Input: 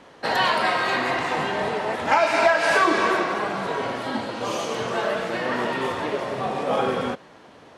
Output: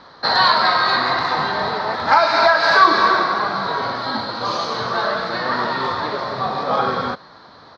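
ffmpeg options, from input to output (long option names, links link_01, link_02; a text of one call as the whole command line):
ffmpeg -i in.wav -af "firequalizer=gain_entry='entry(110,0);entry(280,-5);entry(440,-5);entry(1200,6);entry(2800,-11);entry(4100,12);entry(7500,-20);entry(11000,-25)':delay=0.05:min_phase=1,volume=4dB" out.wav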